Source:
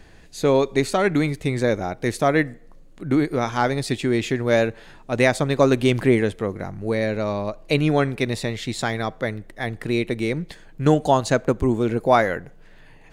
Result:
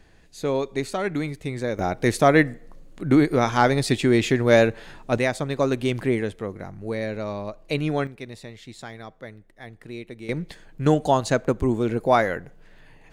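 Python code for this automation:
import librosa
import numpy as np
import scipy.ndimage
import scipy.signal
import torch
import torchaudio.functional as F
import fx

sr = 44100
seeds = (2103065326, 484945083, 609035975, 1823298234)

y = fx.gain(x, sr, db=fx.steps((0.0, -6.5), (1.79, 2.5), (5.18, -5.5), (8.07, -14.0), (10.29, -2.0)))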